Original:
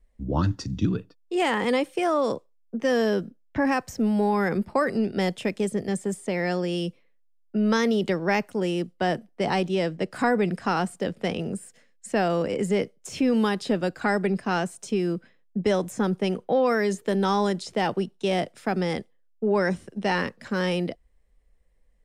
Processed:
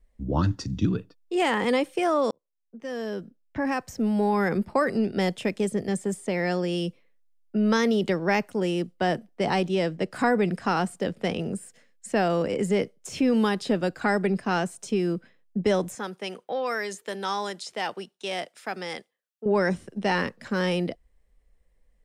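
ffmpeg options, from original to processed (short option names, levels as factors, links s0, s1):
-filter_complex "[0:a]asettb=1/sr,asplit=3[s0][s1][s2];[s0]atrim=end=15.954[s3];[s1]atrim=start=15.95:end=19.46,asetpts=PTS-STARTPTS,afade=t=in:d=0.004:c=qsin,afade=t=out:st=3.506:d=0.004:c=qsin,highpass=f=1100:p=1[s4];[s2]atrim=start=19.456[s5];[s3][s4]acrossfade=d=0.004:c1=hsin:c2=qsin[s6];[s6][s5]acrossfade=d=0.004:c1=qsin:c2=hsin,asplit=2[s7][s8];[s7]atrim=end=2.31,asetpts=PTS-STARTPTS,afade=t=out:st=2.306:d=0.004:c=hsin[s9];[s8]atrim=start=2.31,asetpts=PTS-STARTPTS,afade=t=in:d=2.09[s10];[s9][s10]concat=n=2:v=0:a=1"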